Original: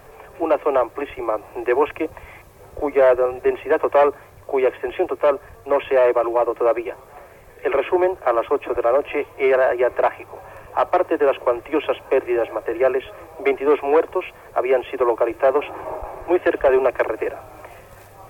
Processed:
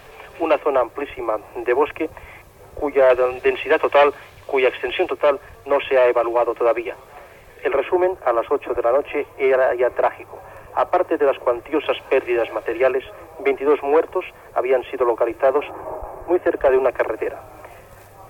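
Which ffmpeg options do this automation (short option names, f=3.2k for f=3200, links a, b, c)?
-af "asetnsamples=n=441:p=0,asendcmd='0.59 equalizer g 2;3.1 equalizer g 13.5;5.12 equalizer g 6.5;7.68 equalizer g -1;11.86 equalizer g 8;12.91 equalizer g -0.5;15.71 equalizer g -9.5;16.61 equalizer g -1',equalizer=f=3.2k:t=o:w=1.5:g=11"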